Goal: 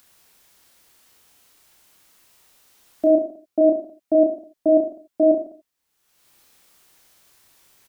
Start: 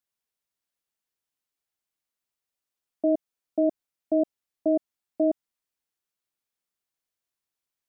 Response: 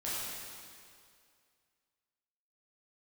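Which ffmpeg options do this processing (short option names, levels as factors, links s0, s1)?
-filter_complex "[0:a]acompressor=mode=upward:threshold=0.00562:ratio=2.5,aecho=1:1:30|64.5|104.2|149.8|202.3:0.631|0.398|0.251|0.158|0.1,asplit=2[s0][s1];[1:a]atrim=start_sample=2205,atrim=end_sample=4410[s2];[s1][s2]afir=irnorm=-1:irlink=0,volume=0.398[s3];[s0][s3]amix=inputs=2:normalize=0,volume=1.41"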